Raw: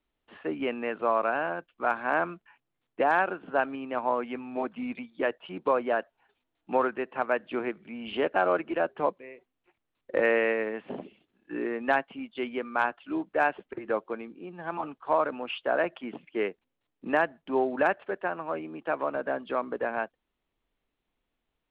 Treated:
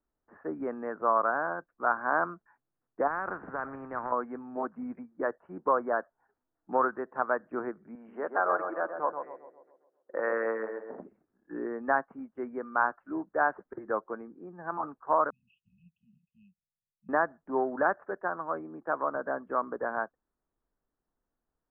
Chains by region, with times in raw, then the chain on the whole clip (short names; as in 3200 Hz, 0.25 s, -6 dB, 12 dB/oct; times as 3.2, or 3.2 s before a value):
3.07–4.12 compressor 4:1, threshold -26 dBFS + spectral compressor 2:1
7.95–11 HPF 590 Hz 6 dB/oct + tape echo 0.132 s, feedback 57%, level -5 dB, low-pass 1300 Hz
15.3–17.09 brick-wall FIR band-stop 210–2500 Hz + tilt +2.5 dB/oct
whole clip: steep low-pass 1700 Hz 48 dB/oct; dynamic EQ 1200 Hz, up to +7 dB, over -42 dBFS, Q 1.8; gain -3.5 dB